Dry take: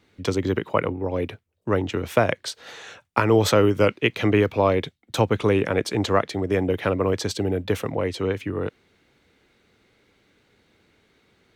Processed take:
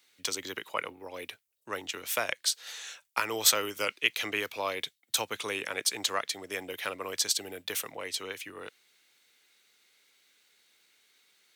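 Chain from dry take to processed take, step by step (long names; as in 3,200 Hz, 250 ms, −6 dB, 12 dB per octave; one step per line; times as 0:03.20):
first difference
level +7 dB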